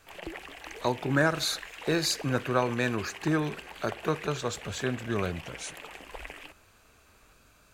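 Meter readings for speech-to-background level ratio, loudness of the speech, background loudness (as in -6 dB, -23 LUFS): 13.0 dB, -30.0 LUFS, -43.0 LUFS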